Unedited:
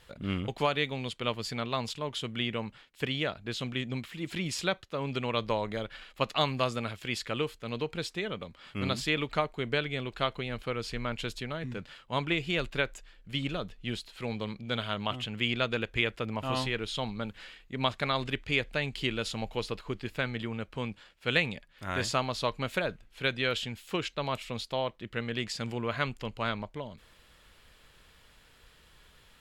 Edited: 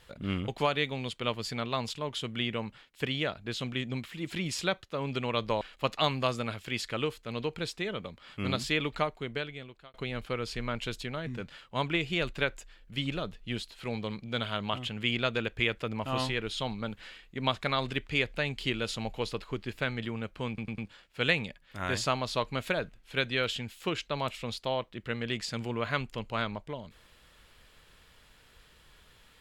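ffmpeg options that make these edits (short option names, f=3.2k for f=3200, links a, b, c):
-filter_complex "[0:a]asplit=6[a][b][c][d][e][f];[a]atrim=end=5.612[g];[b]atrim=start=5.978:end=10.31,asetpts=PTS-STARTPTS,afade=t=out:st=3.322:d=1.01[h];[c]atrim=start=10.31:end=20.952,asetpts=PTS-STARTPTS,afade=t=in:d=0.004:c=hsin[i];[d]atrim=start=20.848:end=20.952[j];[e]atrim=start=20.848:end=20.952[k];[f]atrim=start=20.848[l];[h][i]concat=n=2:v=0:a=1[m];[g][m]acrossfade=d=0.004:c1=hsin:c2=hsin[n];[n][j]acrossfade=d=0.004:c1=hsin:c2=hsin[o];[o][k]acrossfade=d=0.004:c1=hsin:c2=hsin[p];[p][l]acrossfade=d=0.004:c1=hsin:c2=hsin"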